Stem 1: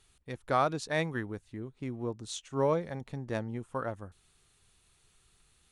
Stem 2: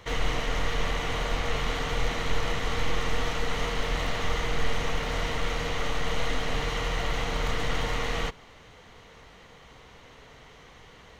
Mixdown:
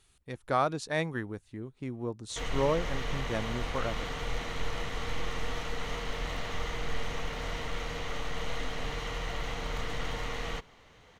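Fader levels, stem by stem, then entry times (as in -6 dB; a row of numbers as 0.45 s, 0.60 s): 0.0 dB, -6.5 dB; 0.00 s, 2.30 s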